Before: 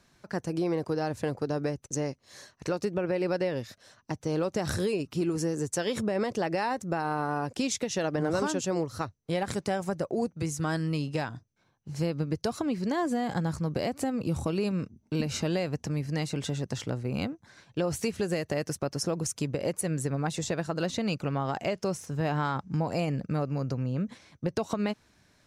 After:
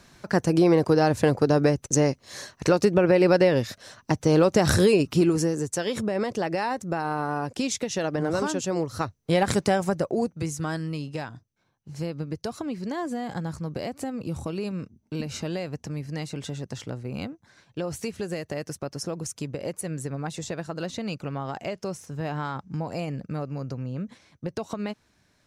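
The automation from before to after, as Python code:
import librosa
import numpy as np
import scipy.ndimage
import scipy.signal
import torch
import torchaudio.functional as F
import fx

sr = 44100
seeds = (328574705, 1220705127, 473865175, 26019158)

y = fx.gain(x, sr, db=fx.line((5.12, 10.0), (5.67, 2.0), (8.73, 2.0), (9.49, 9.0), (10.96, -2.0)))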